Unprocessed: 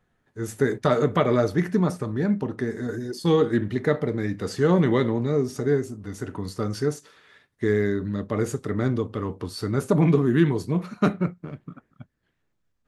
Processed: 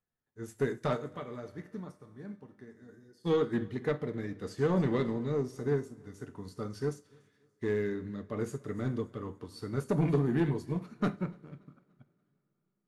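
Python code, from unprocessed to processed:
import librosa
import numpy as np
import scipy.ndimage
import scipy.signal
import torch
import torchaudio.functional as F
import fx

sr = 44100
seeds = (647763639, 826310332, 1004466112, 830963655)

y = fx.comb_fb(x, sr, f0_hz=98.0, decay_s=0.88, harmonics='all', damping=0.0, mix_pct=70, at=(0.96, 3.25), fade=0.02)
y = 10.0 ** (-14.0 / 20.0) * np.tanh(y / 10.0 ** (-14.0 / 20.0))
y = fx.echo_feedback(y, sr, ms=288, feedback_pct=51, wet_db=-20.5)
y = fx.rev_double_slope(y, sr, seeds[0], early_s=0.55, late_s=4.9, knee_db=-18, drr_db=10.5)
y = fx.upward_expand(y, sr, threshold_db=-50.0, expansion=1.5)
y = y * librosa.db_to_amplitude(-6.0)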